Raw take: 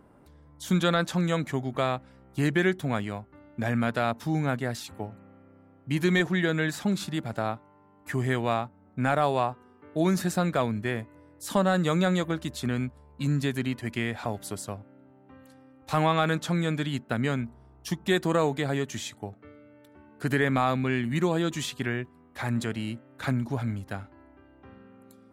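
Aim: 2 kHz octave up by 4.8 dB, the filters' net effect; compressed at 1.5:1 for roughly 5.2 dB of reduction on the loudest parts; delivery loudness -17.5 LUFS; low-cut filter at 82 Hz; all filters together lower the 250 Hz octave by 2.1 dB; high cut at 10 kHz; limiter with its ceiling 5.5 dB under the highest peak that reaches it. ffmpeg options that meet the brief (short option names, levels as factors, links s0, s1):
-af "highpass=82,lowpass=10000,equalizer=f=250:t=o:g=-3,equalizer=f=2000:t=o:g=6,acompressor=threshold=0.0251:ratio=1.5,volume=5.96,alimiter=limit=0.75:level=0:latency=1"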